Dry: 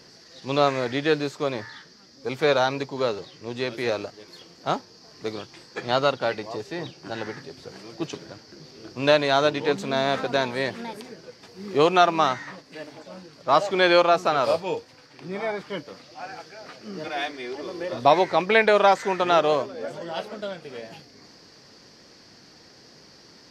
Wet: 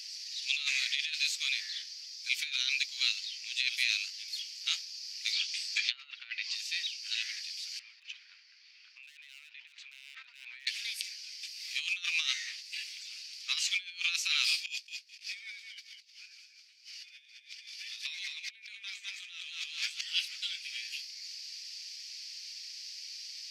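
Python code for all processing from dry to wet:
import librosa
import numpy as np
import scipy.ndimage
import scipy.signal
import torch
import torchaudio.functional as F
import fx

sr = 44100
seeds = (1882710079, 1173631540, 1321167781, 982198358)

y = fx.chain(x, sr, fx.env_lowpass_down(base_hz=1600.0, full_db=-21.5),
    fx.low_shelf(hz=450.0, db=2.5),
    fx.over_compress(threshold_db=-27.0, ratio=-0.5), at=(5.29, 6.55))
y = fx.chain(y, sr, fx.lowpass(hz=1100.0, slope=12),
    fx.clip_hard(threshold_db=-18.0),
    fx.over_compress(threshold_db=-35.0, ratio=-1.0), at=(7.79, 10.67))
y = fx.chain(y, sr, fx.echo_feedback(ms=209, feedback_pct=30, wet_db=-6.0),
    fx.env_flatten(amount_pct=100), at=(14.67, 20.01))
y = scipy.signal.sosfilt(scipy.signal.ellip(4, 1.0, 80, 2400.0, 'highpass', fs=sr, output='sos'), y)
y = fx.over_compress(y, sr, threshold_db=-37.0, ratio=-0.5)
y = F.gain(torch.from_numpy(y), 1.0).numpy()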